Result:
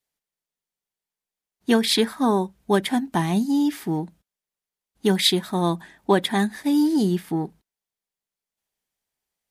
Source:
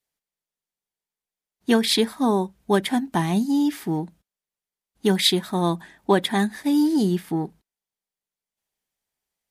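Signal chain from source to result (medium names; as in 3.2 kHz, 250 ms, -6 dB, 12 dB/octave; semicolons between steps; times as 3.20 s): 1.96–2.39 s: peaking EQ 1.5 kHz +6 dB 0.77 oct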